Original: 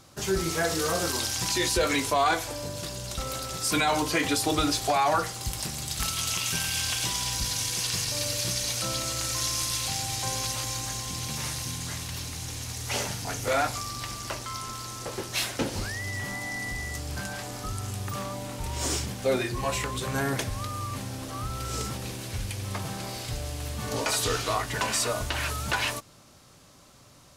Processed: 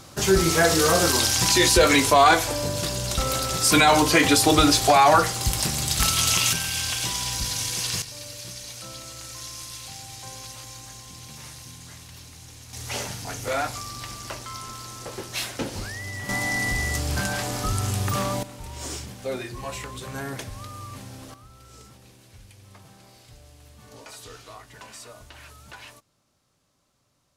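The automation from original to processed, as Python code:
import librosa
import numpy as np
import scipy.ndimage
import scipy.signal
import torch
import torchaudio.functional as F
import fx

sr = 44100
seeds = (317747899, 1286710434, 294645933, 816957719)

y = fx.gain(x, sr, db=fx.steps((0.0, 8.0), (6.53, 1.5), (8.02, -9.0), (12.73, -1.0), (16.29, 8.0), (18.43, -5.0), (21.34, -16.0)))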